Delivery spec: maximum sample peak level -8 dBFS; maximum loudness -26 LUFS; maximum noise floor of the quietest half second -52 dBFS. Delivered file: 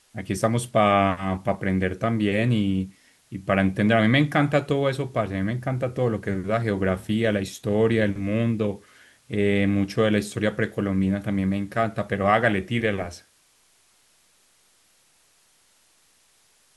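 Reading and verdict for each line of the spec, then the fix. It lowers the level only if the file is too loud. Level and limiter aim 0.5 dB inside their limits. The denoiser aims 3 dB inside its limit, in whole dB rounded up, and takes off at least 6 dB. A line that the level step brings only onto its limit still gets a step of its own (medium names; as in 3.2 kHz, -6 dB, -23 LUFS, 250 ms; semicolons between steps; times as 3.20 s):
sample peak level -5.0 dBFS: fail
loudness -23.5 LUFS: fail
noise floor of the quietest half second -62 dBFS: pass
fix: trim -3 dB; peak limiter -8.5 dBFS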